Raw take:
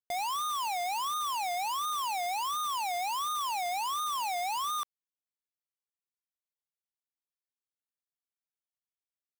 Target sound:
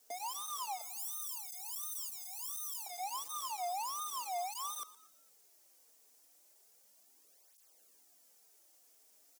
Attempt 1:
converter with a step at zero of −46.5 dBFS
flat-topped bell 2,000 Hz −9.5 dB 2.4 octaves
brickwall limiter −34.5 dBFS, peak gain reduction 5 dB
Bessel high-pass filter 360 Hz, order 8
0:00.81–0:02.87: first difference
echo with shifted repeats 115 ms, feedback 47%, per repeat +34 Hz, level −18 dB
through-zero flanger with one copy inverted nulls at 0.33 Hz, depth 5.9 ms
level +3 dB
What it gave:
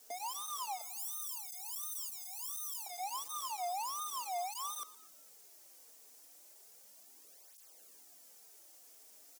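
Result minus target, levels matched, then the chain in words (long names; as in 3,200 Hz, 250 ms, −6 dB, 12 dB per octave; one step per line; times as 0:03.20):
converter with a step at zero: distortion +7 dB
converter with a step at zero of −53.5 dBFS
flat-topped bell 2,000 Hz −9.5 dB 2.4 octaves
brickwall limiter −34.5 dBFS, peak gain reduction 5 dB
Bessel high-pass filter 360 Hz, order 8
0:00.81–0:02.87: first difference
echo with shifted repeats 115 ms, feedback 47%, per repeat +34 Hz, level −18 dB
through-zero flanger with one copy inverted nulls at 0.33 Hz, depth 5.9 ms
level +3 dB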